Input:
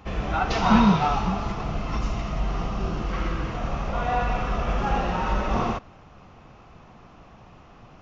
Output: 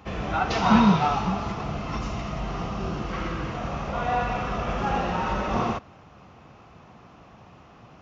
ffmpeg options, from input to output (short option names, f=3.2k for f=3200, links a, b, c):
-af "highpass=70"